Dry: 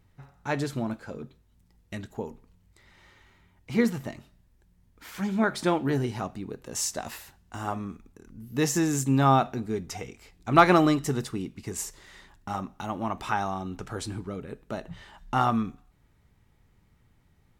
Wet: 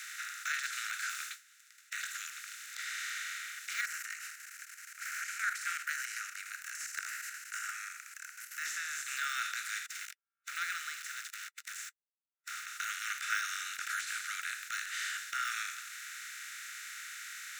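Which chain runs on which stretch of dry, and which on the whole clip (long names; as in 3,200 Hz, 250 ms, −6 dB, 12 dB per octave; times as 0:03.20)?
0:01.09–0:01.94: noise gate −56 dBFS, range −38 dB + noise that follows the level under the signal 26 dB + double-tracking delay 16 ms −13.5 dB
0:03.81–0:08.66: phaser with its sweep stopped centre 970 Hz, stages 6 + output level in coarse steps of 16 dB + square-wave tremolo 3.4 Hz, depth 60%, duty 85%
0:09.86–0:12.66: centre clipping without the shift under −38 dBFS + downward expander −36 dBFS + guitar amp tone stack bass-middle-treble 5-5-5
whole clip: compressor on every frequency bin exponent 0.4; Butterworth high-pass 1,400 Hz 96 dB per octave; de-essing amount 85%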